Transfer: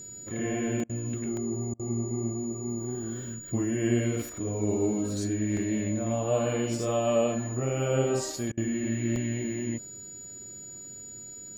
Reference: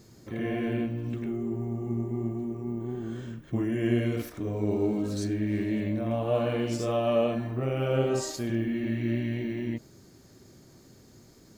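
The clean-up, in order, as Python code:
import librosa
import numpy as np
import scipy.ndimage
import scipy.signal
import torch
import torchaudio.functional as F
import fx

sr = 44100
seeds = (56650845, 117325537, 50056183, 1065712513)

y = fx.notch(x, sr, hz=6900.0, q=30.0)
y = fx.fix_interpolate(y, sr, at_s=(0.8, 1.37, 5.57, 9.16), length_ms=1.3)
y = fx.fix_interpolate(y, sr, at_s=(0.84, 1.74, 8.52), length_ms=53.0)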